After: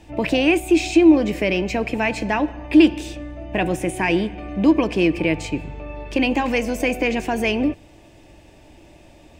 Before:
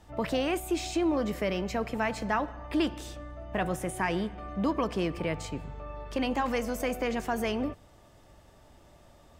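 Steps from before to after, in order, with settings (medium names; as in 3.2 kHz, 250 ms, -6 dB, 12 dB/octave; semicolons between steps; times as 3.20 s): graphic EQ with 31 bands 315 Hz +10 dB, 1.25 kHz -12 dB, 2.5 kHz +11 dB, 12.5 kHz -8 dB; trim +7.5 dB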